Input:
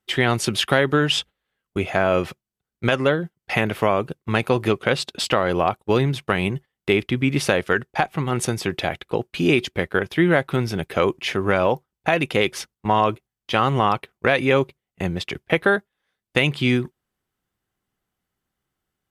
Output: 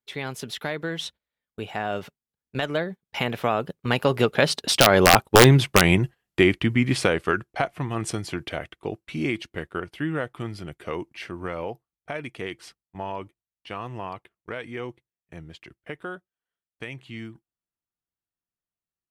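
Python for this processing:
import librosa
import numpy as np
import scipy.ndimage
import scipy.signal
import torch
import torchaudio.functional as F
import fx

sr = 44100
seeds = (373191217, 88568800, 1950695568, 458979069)

y = fx.doppler_pass(x, sr, speed_mps=35, closest_m=22.0, pass_at_s=5.4)
y = (np.mod(10.0 ** (9.0 / 20.0) * y + 1.0, 2.0) - 1.0) / 10.0 ** (9.0 / 20.0)
y = y * 10.0 ** (6.5 / 20.0)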